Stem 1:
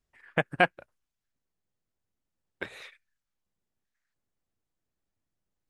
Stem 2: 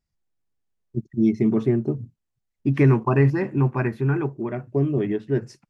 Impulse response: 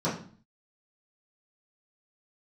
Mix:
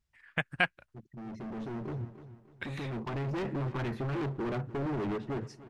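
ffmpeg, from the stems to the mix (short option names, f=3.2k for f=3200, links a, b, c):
-filter_complex "[0:a]equalizer=f=460:t=o:w=2.6:g=-14.5,volume=2dB,asplit=2[a][b];[1:a]dynaudnorm=f=280:g=7:m=12.5dB,alimiter=limit=-12.5dB:level=0:latency=1:release=30,asoftclip=type=hard:threshold=-26.5dB,volume=-5dB,asplit=2[c][d];[d]volume=-17dB[e];[b]apad=whole_len=251297[f];[c][f]sidechaincompress=threshold=-40dB:ratio=3:attack=16:release=1270[g];[e]aecho=0:1:299|598|897|1196|1495:1|0.36|0.13|0.0467|0.0168[h];[a][g][h]amix=inputs=3:normalize=0,highshelf=f=6.7k:g=-9"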